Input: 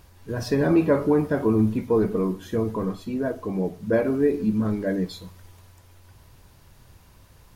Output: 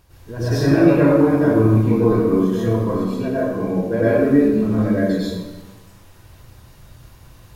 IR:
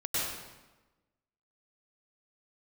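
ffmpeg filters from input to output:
-filter_complex "[1:a]atrim=start_sample=2205[s0];[0:a][s0]afir=irnorm=-1:irlink=0,volume=0.891"

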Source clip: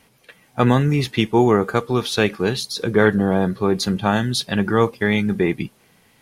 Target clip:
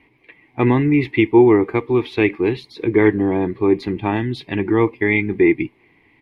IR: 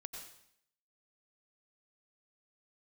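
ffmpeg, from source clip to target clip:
-af "firequalizer=gain_entry='entry(110,0);entry(200,-8);entry(310,11);entry(530,-8);entry(990,2);entry(1400,-14);entry(2100,9);entry(3000,-6);entry(6100,-25)':delay=0.05:min_phase=1"

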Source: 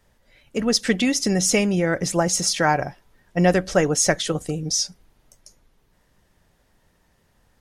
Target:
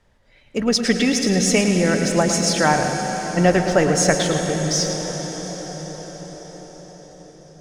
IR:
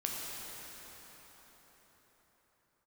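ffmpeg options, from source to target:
-filter_complex "[0:a]adynamicsmooth=sensitivity=7.5:basefreq=7600,asplit=2[s0][s1];[1:a]atrim=start_sample=2205,asetrate=27783,aresample=44100,adelay=109[s2];[s1][s2]afir=irnorm=-1:irlink=0,volume=0.299[s3];[s0][s3]amix=inputs=2:normalize=0,volume=1.19"

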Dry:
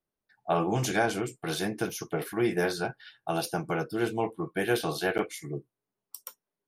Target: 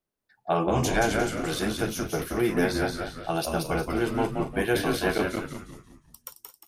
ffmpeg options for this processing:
-filter_complex "[0:a]asplit=2[s0][s1];[s1]aecho=0:1:217:0.224[s2];[s0][s2]amix=inputs=2:normalize=0,asettb=1/sr,asplit=3[s3][s4][s5];[s3]atrim=end=5.274[s6];[s4]atrim=start=5.27:end=6.24,asetpts=PTS-STARTPTS,afade=t=in:d=0.004:c=qsin,afade=t=out:st=0.966:d=0.004:c=qsin,acrossover=split=410|3300[s7][s8][s9];[s7]acompressor=threshold=0.00501:ratio=4[s10];[s8]acompressor=threshold=0.002:ratio=4[s11];[s9]acompressor=threshold=0.00282:ratio=4[s12];[s10][s11][s12]amix=inputs=3:normalize=0[s13];[s5]atrim=start=6.236[s14];[s6][s13]acrossfade=d=0.004:c1=hsin:c2=qsin[s15];[s15][s14]acrossfade=d=0.004:c1=qsin:c2=hsin,asplit=2[s16][s17];[s17]asplit=5[s18][s19][s20][s21][s22];[s18]adelay=177,afreqshift=-97,volume=0.631[s23];[s19]adelay=354,afreqshift=-194,volume=0.24[s24];[s20]adelay=531,afreqshift=-291,volume=0.0912[s25];[s21]adelay=708,afreqshift=-388,volume=0.0347[s26];[s22]adelay=885,afreqshift=-485,volume=0.0132[s27];[s23][s24][s25][s26][s27]amix=inputs=5:normalize=0[s28];[s16][s28]amix=inputs=2:normalize=0,volume=1.19"

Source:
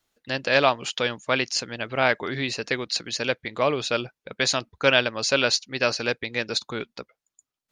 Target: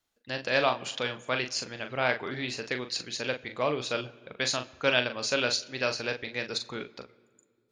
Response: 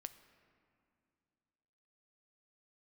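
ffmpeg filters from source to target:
-filter_complex "[0:a]asplit=2[s0][s1];[1:a]atrim=start_sample=2205,asetrate=57330,aresample=44100,adelay=40[s2];[s1][s2]afir=irnorm=-1:irlink=0,volume=1[s3];[s0][s3]amix=inputs=2:normalize=0,volume=0.473"

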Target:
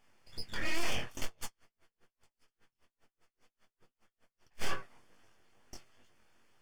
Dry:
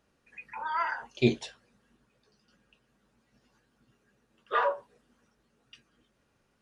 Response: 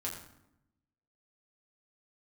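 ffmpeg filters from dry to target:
-filter_complex "[0:a]equalizer=f=2200:w=1.1:g=3.5,aeval=exprs='abs(val(0))':c=same,flanger=delay=7.8:depth=1.3:regen=-40:speed=0.85:shape=triangular,aeval=exprs='clip(val(0),-1,0.0211)':c=same,flanger=delay=19.5:depth=5.3:speed=2.3,asuperstop=centerf=3900:order=4:qfactor=7,asettb=1/sr,asplit=3[s0][s1][s2];[s0]atrim=end=1.244[s3];[s1]atrim=start=1.24:end=4.64,asetpts=PTS-STARTPTS,afade=t=in:d=0.004:c=qsin,afade=t=out:st=3.396:d=0.004:c=qsin,aeval=exprs='val(0)*pow(10,-39*(0.5-0.5*cos(2*PI*5*n/s))/20)':c=same[s4];[s2]atrim=start=4.636[s5];[s3][s4]acrossfade=d=0.004:c1=hsin:c2=qsin[s6];[s6][s5]acrossfade=d=0.004:c1=qsin:c2=hsin,volume=3.55"

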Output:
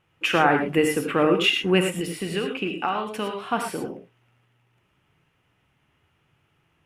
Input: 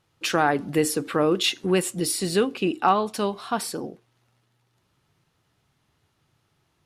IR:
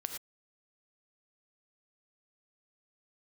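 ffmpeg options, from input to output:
-filter_complex "[0:a]highshelf=f=3400:t=q:w=3:g=-6.5,asettb=1/sr,asplit=3[s0][s1][s2];[s0]atrim=end=2.004[s3];[s1]atrim=start=2:end=3.46,asetpts=PTS-STARTPTS,afade=t=in:d=0.004:c=qsin,afade=t=out:st=1.456:d=0.004:c=qsin,acrossover=split=1400|3300[s4][s5][s6];[s4]acompressor=threshold=0.0447:ratio=4[s7];[s5]acompressor=threshold=0.0178:ratio=4[s8];[s6]acompressor=threshold=0.00891:ratio=4[s9];[s7][s8][s9]amix=inputs=3:normalize=0[s10];[s2]atrim=start=3.456[s11];[s3][s10]acrossfade=d=0.004:c1=hsin:c2=qsin[s12];[s12][s11]acrossfade=d=0.004:c1=qsin:c2=hsin[s13];[1:a]atrim=start_sample=2205[s14];[s13][s14]afir=irnorm=-1:irlink=0,volume=1.26"

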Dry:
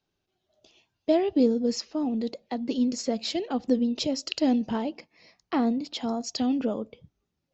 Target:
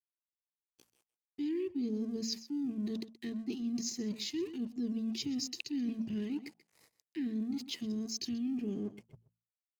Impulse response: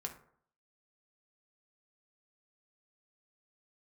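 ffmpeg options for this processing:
-af "asuperstop=centerf=860:order=12:qfactor=0.56,aeval=exprs='sgn(val(0))*max(abs(val(0))-0.00168,0)':c=same,equalizer=f=125:t=o:w=1:g=7,equalizer=f=500:t=o:w=1:g=12,equalizer=f=1000:t=o:w=1:g=7,equalizer=f=4000:t=o:w=1:g=-7,atempo=0.77,bandreject=f=60:t=h:w=6,bandreject=f=120:t=h:w=6,bandreject=f=180:t=h:w=6,bandreject=f=240:t=h:w=6,aecho=1:1:128:0.141,asetrate=41625,aresample=44100,atempo=1.05946,highshelf=f=2800:g=11,areverse,acompressor=threshold=0.0398:ratio=6,areverse,volume=0.531"

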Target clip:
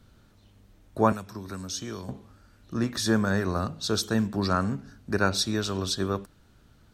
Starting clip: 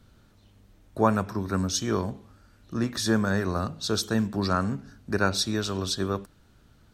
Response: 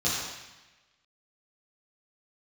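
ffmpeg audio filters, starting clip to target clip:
-filter_complex "[0:a]asettb=1/sr,asplit=3[s0][s1][s2];[s0]atrim=end=1.124[s3];[s1]atrim=start=1.12:end=2.09,asetpts=PTS-STARTPTS,afade=t=in:d=0.004:c=qsin,afade=t=out:st=0.966:d=0.004:c=qsin,acrossover=split=280|2800[s4][s5][s6];[s4]acompressor=threshold=0.0112:ratio=4[s7];[s5]acompressor=threshold=0.00891:ratio=4[s8];[s6]acompressor=threshold=0.0224:ratio=4[s9];[s7][s8][s9]amix=inputs=3:normalize=0[s10];[s2]atrim=start=2.086[s11];[s3][s10]acrossfade=d=0.004:c1=hsin:c2=qsin[s12];[s12][s11]acrossfade=d=0.004:c1=qsin:c2=hsin"

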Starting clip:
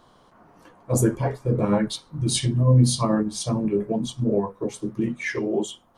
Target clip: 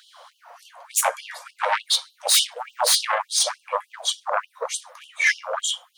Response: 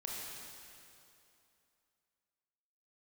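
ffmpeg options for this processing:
-af "equalizer=f=3900:w=1.5:g=2.5,aeval=exprs='0.501*(cos(1*acos(clip(val(0)/0.501,-1,1)))-cos(1*PI/2))+0.224*(cos(3*acos(clip(val(0)/0.501,-1,1)))-cos(3*PI/2))+0.0112*(cos(5*acos(clip(val(0)/0.501,-1,1)))-cos(5*PI/2))+0.0112*(cos(6*acos(clip(val(0)/0.501,-1,1)))-cos(6*PI/2))+0.251*(cos(7*acos(clip(val(0)/0.501,-1,1)))-cos(7*PI/2))':c=same,afftfilt=real='re*gte(b*sr/1024,470*pow(2800/470,0.5+0.5*sin(2*PI*3.4*pts/sr)))':imag='im*gte(b*sr/1024,470*pow(2800/470,0.5+0.5*sin(2*PI*3.4*pts/sr)))':win_size=1024:overlap=0.75"

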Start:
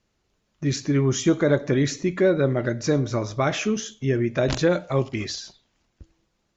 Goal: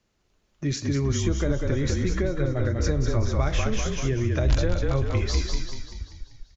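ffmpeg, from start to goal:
-filter_complex "[0:a]asplit=8[s0][s1][s2][s3][s4][s5][s6][s7];[s1]adelay=194,afreqshift=-37,volume=0.562[s8];[s2]adelay=388,afreqshift=-74,volume=0.292[s9];[s3]adelay=582,afreqshift=-111,volume=0.151[s10];[s4]adelay=776,afreqshift=-148,volume=0.0794[s11];[s5]adelay=970,afreqshift=-185,volume=0.0412[s12];[s6]adelay=1164,afreqshift=-222,volume=0.0214[s13];[s7]adelay=1358,afreqshift=-259,volume=0.0111[s14];[s0][s8][s9][s10][s11][s12][s13][s14]amix=inputs=8:normalize=0,asubboost=boost=7:cutoff=71,acrossover=split=160[s15][s16];[s16]acompressor=threshold=0.0501:ratio=6[s17];[s15][s17]amix=inputs=2:normalize=0"

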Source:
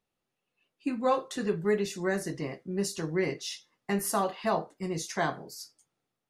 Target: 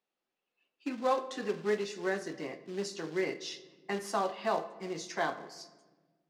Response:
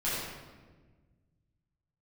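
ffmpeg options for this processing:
-filter_complex "[0:a]acrusher=bits=4:mode=log:mix=0:aa=0.000001,acrossover=split=220 6900:gain=0.0891 1 0.0891[s0][s1][s2];[s0][s1][s2]amix=inputs=3:normalize=0,asplit=2[s3][s4];[1:a]atrim=start_sample=2205,lowpass=8600[s5];[s4][s5]afir=irnorm=-1:irlink=0,volume=0.0891[s6];[s3][s6]amix=inputs=2:normalize=0,volume=0.708"

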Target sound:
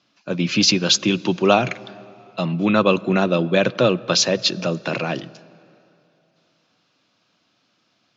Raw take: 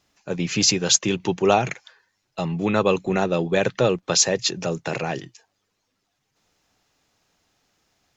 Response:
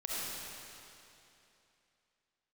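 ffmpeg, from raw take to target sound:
-filter_complex "[0:a]highpass=f=130:w=0.5412,highpass=f=130:w=1.3066,equalizer=f=150:t=q:w=4:g=-5,equalizer=f=430:t=q:w=4:g=-9,equalizer=f=820:t=q:w=4:g=-9,equalizer=f=1900:t=q:w=4:g=-8,lowpass=f=4900:w=0.5412,lowpass=f=4900:w=1.3066,asplit=2[s0][s1];[1:a]atrim=start_sample=2205,highshelf=f=2300:g=-9.5[s2];[s1][s2]afir=irnorm=-1:irlink=0,volume=0.0841[s3];[s0][s3]amix=inputs=2:normalize=0,volume=2"

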